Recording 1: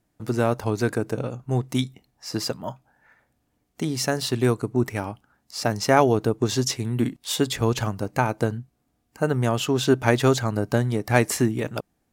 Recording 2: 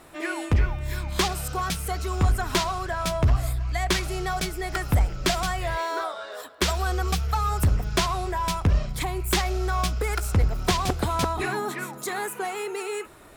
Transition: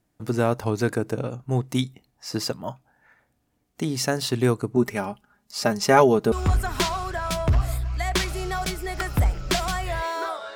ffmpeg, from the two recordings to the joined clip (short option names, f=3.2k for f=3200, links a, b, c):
-filter_complex "[0:a]asettb=1/sr,asplit=3[a][b][c];[a]atrim=end=4.764[d];[b]atrim=start=4.76:end=6.32,asetpts=PTS-STARTPTS,afade=t=in:d=0.004:c=qsin,afade=t=out:st=1.556:d=0.004:c=qsin,aecho=1:1:4.9:0.66,atrim=end_sample=68796[e];[c]atrim=start=6.316[f];[d][e]acrossfade=d=0.004:c1=hsin:c2=qsin[g];[g][f]acrossfade=d=0.004:c1=qsin:c2=hsin,apad=whole_dur=10.55,atrim=end=10.55,atrim=end=6.322[h];[1:a]atrim=start=2.068:end=6.3[i];[h][i]acrossfade=d=0.004:c1=hsin:c2=hsin"